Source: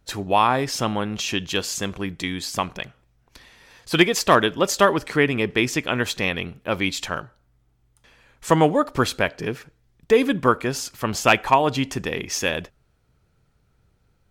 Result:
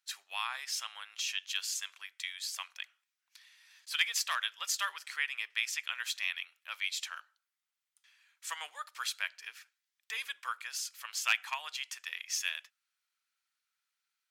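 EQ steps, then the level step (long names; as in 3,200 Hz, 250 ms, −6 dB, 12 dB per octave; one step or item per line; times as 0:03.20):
Bessel high-pass filter 2,100 Hz, order 4
−7.0 dB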